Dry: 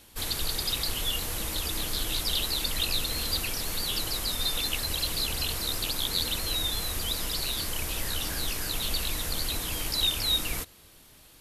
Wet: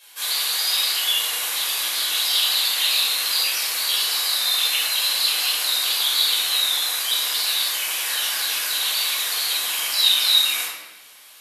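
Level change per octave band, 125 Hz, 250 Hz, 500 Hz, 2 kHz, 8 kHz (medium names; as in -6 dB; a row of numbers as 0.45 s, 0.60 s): under -25 dB, under -10 dB, -1.5 dB, +10.5 dB, +9.0 dB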